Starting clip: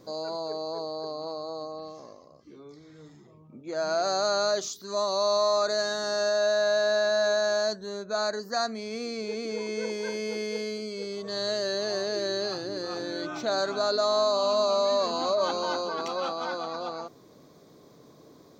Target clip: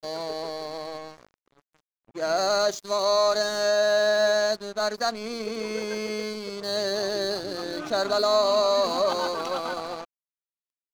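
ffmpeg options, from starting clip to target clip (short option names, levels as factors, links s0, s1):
-filter_complex "[0:a]asplit=2[s0][s1];[s1]adelay=66,lowpass=f=970:p=1,volume=0.112,asplit=2[s2][s3];[s3]adelay=66,lowpass=f=970:p=1,volume=0.52,asplit=2[s4][s5];[s5]adelay=66,lowpass=f=970:p=1,volume=0.52,asplit=2[s6][s7];[s7]adelay=66,lowpass=f=970:p=1,volume=0.52[s8];[s0][s2][s4][s6][s8]amix=inputs=5:normalize=0,aeval=exprs='sgn(val(0))*max(abs(val(0))-0.0075,0)':c=same,atempo=1.7,volume=1.58"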